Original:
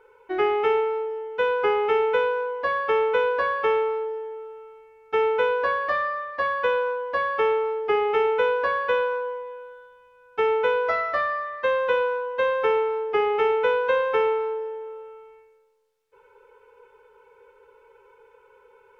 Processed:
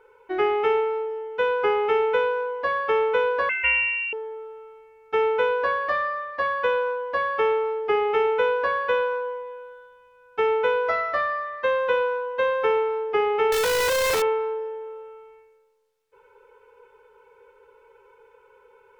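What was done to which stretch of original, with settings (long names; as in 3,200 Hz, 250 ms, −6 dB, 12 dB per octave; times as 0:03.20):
0:03.49–0:04.13: voice inversion scrambler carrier 3,200 Hz
0:13.52–0:14.22: sign of each sample alone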